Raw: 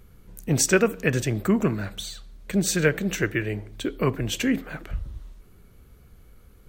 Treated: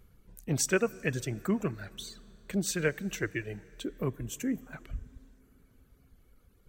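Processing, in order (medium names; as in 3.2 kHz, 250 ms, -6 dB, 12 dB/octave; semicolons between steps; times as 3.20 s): 3.84–4.73 s: FFT filter 290 Hz 0 dB, 4.5 kHz -12 dB, 6.7 kHz +2 dB; reverb removal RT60 1.1 s; plate-style reverb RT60 4 s, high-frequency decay 0.7×, DRR 20 dB; trim -7.5 dB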